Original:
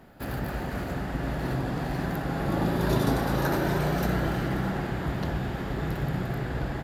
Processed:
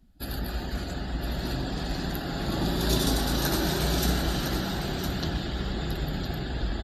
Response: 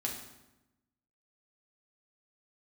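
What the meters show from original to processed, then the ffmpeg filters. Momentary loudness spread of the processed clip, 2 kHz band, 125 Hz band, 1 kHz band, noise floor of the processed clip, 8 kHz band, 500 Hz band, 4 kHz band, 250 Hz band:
8 LU, −1.5 dB, −2.0 dB, −3.0 dB, −35 dBFS, +10.0 dB, −2.5 dB, +10.0 dB, −1.5 dB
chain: -filter_complex "[0:a]equalizer=frequency=125:width_type=o:width=1:gain=-11,equalizer=frequency=250:width_type=o:width=1:gain=-4,equalizer=frequency=500:width_type=o:width=1:gain=-8,equalizer=frequency=1000:width_type=o:width=1:gain=-8,equalizer=frequency=2000:width_type=o:width=1:gain=-7,equalizer=frequency=4000:width_type=o:width=1:gain=6,equalizer=frequency=8000:width_type=o:width=1:gain=6,aecho=1:1:1009:0.473,aresample=32000,aresample=44100,asplit=2[link_01][link_02];[1:a]atrim=start_sample=2205,adelay=121[link_03];[link_02][link_03]afir=irnorm=-1:irlink=0,volume=-14dB[link_04];[link_01][link_04]amix=inputs=2:normalize=0,afftdn=noise_reduction=20:noise_floor=-49,volume=5.5dB"

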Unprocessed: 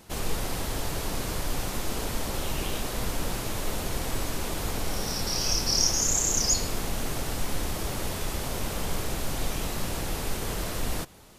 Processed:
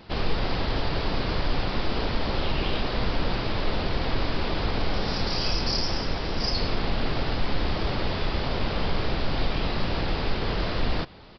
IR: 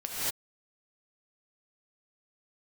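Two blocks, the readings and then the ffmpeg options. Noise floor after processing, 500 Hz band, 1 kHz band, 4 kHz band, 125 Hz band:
−30 dBFS, +4.5 dB, +4.5 dB, +1.5 dB, +4.5 dB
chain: -filter_complex "[0:a]asplit=2[link_01][link_02];[link_02]alimiter=limit=-19.5dB:level=0:latency=1:release=102,volume=-2dB[link_03];[link_01][link_03]amix=inputs=2:normalize=0,aresample=11025,aresample=44100"

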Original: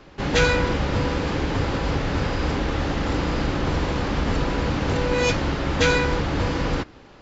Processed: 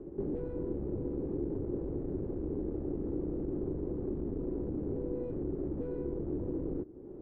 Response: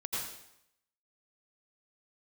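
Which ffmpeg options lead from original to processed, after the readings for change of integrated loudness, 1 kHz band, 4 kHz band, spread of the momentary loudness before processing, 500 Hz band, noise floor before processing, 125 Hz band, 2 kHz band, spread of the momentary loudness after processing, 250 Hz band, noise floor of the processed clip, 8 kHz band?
−13.5 dB, −29.5 dB, below −40 dB, 5 LU, −11.0 dB, −47 dBFS, −15.5 dB, below −40 dB, 1 LU, −9.0 dB, −46 dBFS, can't be measured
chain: -af "aeval=exprs='(tanh(12.6*val(0)+0.5)-tanh(0.5))/12.6':channel_layout=same,acompressor=threshold=-42dB:ratio=2.5,lowpass=frequency=370:width_type=q:width=4.5"

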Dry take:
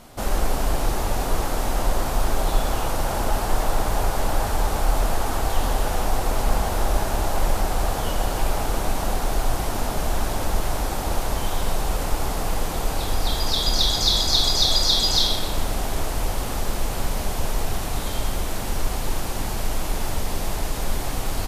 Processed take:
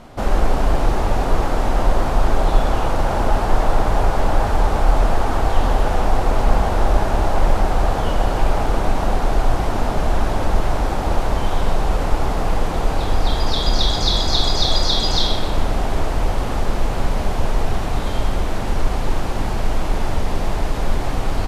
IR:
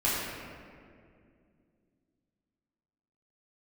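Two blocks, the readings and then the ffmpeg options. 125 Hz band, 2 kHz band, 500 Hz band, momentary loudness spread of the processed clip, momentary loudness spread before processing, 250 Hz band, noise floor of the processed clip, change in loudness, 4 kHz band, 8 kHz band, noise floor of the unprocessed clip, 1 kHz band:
+6.0 dB, +3.5 dB, +5.5 dB, 6 LU, 10 LU, +6.0 dB, −22 dBFS, +3.5 dB, −1.0 dB, −5.5 dB, −27 dBFS, +5.0 dB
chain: -af "aemphasis=mode=reproduction:type=75fm,volume=5dB"

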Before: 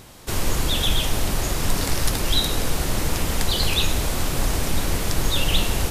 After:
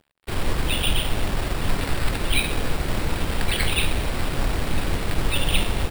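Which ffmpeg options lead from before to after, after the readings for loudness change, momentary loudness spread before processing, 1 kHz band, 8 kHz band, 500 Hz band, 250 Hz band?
−2.0 dB, 4 LU, −0.5 dB, −6.5 dB, −1.0 dB, −1.0 dB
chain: -af "aresample=11025,aeval=exprs='sgn(val(0))*max(abs(val(0))-0.0119,0)':channel_layout=same,aresample=44100,acrusher=samples=7:mix=1:aa=0.000001"

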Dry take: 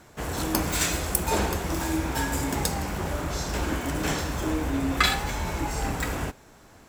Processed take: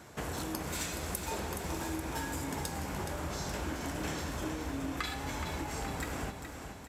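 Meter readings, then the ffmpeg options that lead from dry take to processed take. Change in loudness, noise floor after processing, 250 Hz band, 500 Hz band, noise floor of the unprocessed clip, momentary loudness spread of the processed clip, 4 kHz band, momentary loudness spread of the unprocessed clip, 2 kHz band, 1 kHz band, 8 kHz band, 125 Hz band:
−10.0 dB, −46 dBFS, −9.0 dB, −8.5 dB, −52 dBFS, 2 LU, −11.0 dB, 7 LU, −10.0 dB, −9.0 dB, −10.0 dB, −9.5 dB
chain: -filter_complex "[0:a]highpass=55,acompressor=threshold=-35dB:ratio=6,asplit=2[link_01][link_02];[link_02]aecho=0:1:421|842|1263|1684|2105|2526:0.398|0.207|0.108|0.056|0.0291|0.0151[link_03];[link_01][link_03]amix=inputs=2:normalize=0,aresample=32000,aresample=44100"

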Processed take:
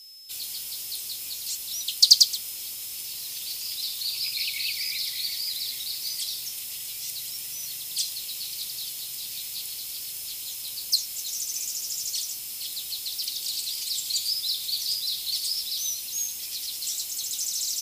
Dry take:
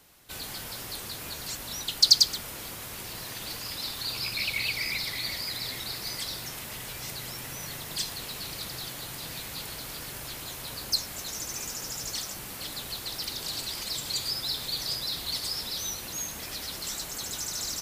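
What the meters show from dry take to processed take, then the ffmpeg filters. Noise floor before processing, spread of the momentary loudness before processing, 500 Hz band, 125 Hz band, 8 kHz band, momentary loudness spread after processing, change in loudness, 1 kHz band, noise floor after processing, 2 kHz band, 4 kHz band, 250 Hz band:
−40 dBFS, 9 LU, below −15 dB, below −15 dB, +5.0 dB, 7 LU, +3.5 dB, below −15 dB, −36 dBFS, −5.5 dB, +3.0 dB, below −15 dB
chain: -af "aeval=exprs='val(0)+0.00355*sin(2*PI*5200*n/s)':channel_layout=same,aexciter=amount=9.8:drive=3.1:freq=2400,volume=-16dB"

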